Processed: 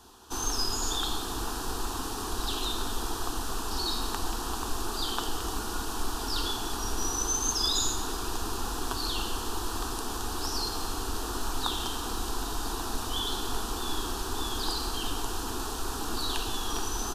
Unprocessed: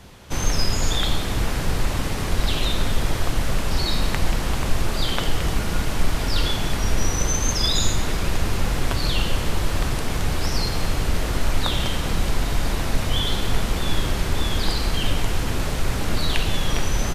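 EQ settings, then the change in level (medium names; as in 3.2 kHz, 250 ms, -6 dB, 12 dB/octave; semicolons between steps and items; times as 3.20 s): bass shelf 200 Hz -11.5 dB; static phaser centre 570 Hz, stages 6; -1.5 dB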